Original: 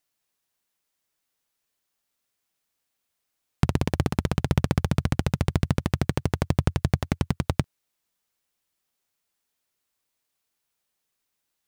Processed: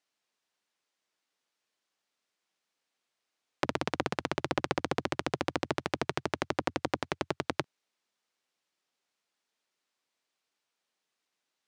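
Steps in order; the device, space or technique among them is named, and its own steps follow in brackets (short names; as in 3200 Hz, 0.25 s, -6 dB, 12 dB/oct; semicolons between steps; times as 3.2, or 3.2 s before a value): public-address speaker with an overloaded transformer (core saturation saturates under 760 Hz; BPF 220–6000 Hz)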